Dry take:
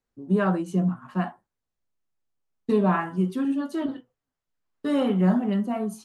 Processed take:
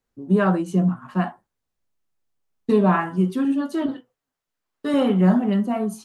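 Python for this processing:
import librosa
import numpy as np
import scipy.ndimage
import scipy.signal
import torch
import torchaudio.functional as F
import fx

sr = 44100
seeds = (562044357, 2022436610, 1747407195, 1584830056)

y = fx.low_shelf(x, sr, hz=190.0, db=-9.5, at=(3.95, 4.94))
y = y * librosa.db_to_amplitude(4.0)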